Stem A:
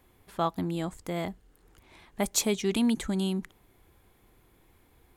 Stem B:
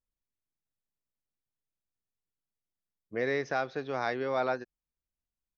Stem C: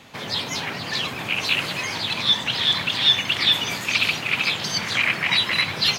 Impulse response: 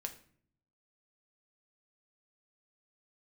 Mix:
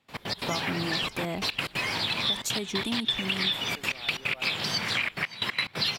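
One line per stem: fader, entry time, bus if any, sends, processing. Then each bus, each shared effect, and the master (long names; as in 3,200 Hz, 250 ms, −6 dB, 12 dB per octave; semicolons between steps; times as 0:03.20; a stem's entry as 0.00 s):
+2.5 dB, 0.10 s, no send, no echo send, downward compressor, threshold −29 dBFS, peak gain reduction 8 dB
−15.0 dB, 0.00 s, no send, no echo send, no processing
−0.5 dB, 0.00 s, no send, echo send −20 dB, notch filter 6,400 Hz, Q 7; gate pattern ".x.x.xxxxxxxx.x." 180 BPM −24 dB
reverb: not used
echo: single-tap delay 565 ms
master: downward compressor 5 to 1, threshold −25 dBFS, peak gain reduction 11 dB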